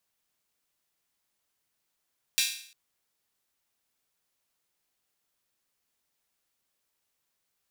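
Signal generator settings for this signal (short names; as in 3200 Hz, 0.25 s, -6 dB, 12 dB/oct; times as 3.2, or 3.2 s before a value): open hi-hat length 0.35 s, high-pass 2900 Hz, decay 0.56 s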